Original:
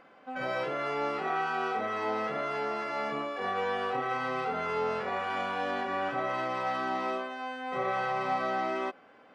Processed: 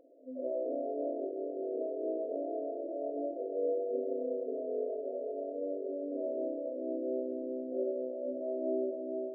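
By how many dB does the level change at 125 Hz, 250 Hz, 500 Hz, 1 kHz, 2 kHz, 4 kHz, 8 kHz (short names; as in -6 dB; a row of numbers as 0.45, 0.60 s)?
under -30 dB, +1.5 dB, +1.0 dB, under -15 dB, under -40 dB, under -40 dB, n/a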